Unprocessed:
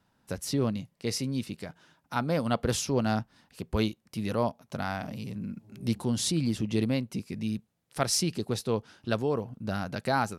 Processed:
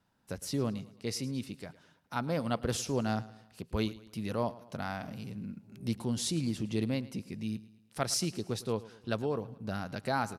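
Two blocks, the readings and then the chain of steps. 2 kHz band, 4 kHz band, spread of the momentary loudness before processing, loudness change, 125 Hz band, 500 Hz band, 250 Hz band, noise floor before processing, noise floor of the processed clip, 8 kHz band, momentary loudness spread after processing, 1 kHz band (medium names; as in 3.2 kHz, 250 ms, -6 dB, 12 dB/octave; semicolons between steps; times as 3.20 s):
-4.5 dB, -4.5 dB, 10 LU, -4.5 dB, -4.5 dB, -4.5 dB, -4.5 dB, -72 dBFS, -65 dBFS, -4.5 dB, 10 LU, -4.5 dB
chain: feedback delay 109 ms, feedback 46%, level -18.5 dB; trim -4.5 dB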